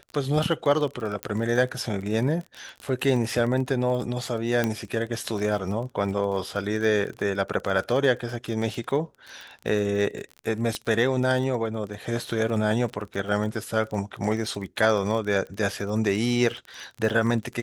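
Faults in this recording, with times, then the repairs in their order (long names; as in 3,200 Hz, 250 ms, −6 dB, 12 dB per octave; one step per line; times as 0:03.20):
surface crackle 28 per second −31 dBFS
0:01.23: click −13 dBFS
0:04.64: click −10 dBFS
0:10.75: click −15 dBFS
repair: click removal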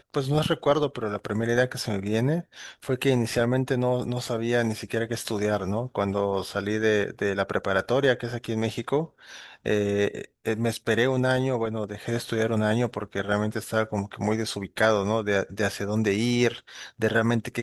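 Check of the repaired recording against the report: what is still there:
none of them is left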